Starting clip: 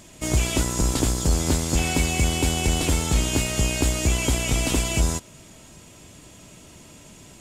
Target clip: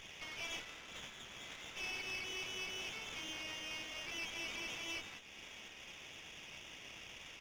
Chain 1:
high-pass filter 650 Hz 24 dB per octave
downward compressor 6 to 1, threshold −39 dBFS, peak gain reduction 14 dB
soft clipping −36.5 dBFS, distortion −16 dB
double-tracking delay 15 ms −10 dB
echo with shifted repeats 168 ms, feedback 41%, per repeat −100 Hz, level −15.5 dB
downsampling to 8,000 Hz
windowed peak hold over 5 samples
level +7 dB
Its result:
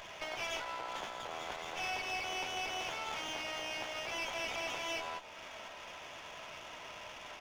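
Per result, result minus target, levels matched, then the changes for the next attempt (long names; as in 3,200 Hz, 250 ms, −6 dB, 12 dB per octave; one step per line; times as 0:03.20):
500 Hz band +6.5 dB; soft clipping: distortion −6 dB
change: high-pass filter 2,000 Hz 24 dB per octave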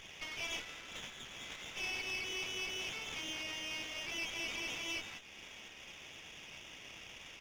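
soft clipping: distortion −7 dB
change: soft clipping −43 dBFS, distortion −9 dB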